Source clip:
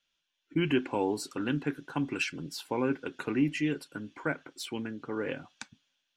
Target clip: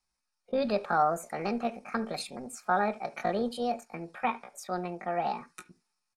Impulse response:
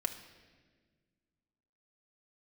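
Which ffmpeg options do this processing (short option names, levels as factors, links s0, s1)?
-filter_complex "[0:a]firequalizer=gain_entry='entry(130,0);entry(290,-11);entry(520,3);entry(1900,-8);entry(6100,0);entry(11000,-28)':delay=0.05:min_phase=1,asetrate=70004,aresample=44100,atempo=0.629961,asplit=2[s0][s1];[1:a]atrim=start_sample=2205,atrim=end_sample=3969,lowpass=2300[s2];[s1][s2]afir=irnorm=-1:irlink=0,volume=0.891[s3];[s0][s3]amix=inputs=2:normalize=0"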